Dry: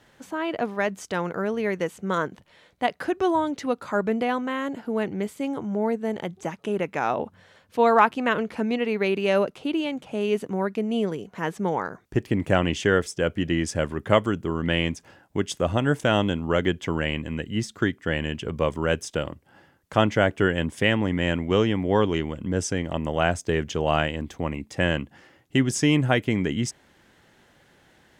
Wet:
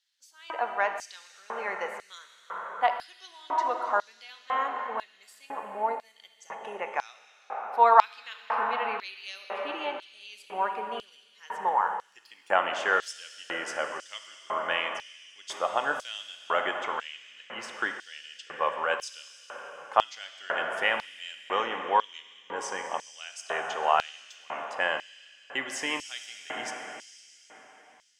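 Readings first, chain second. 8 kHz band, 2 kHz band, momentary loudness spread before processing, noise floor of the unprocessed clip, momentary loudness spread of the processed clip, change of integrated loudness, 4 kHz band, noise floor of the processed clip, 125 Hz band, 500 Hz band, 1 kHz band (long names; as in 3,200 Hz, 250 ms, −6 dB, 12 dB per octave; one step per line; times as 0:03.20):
−6.5 dB, −2.5 dB, 8 LU, −59 dBFS, 17 LU, −4.5 dB, −4.5 dB, −59 dBFS, below −30 dB, −9.5 dB, +1.0 dB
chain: noise reduction from a noise print of the clip's start 8 dB
high-shelf EQ 3,200 Hz −9.5 dB
dense smooth reverb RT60 3.9 s, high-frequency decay 0.95×, DRR 4 dB
auto-filter high-pass square 1 Hz 920–4,400 Hz
level −1 dB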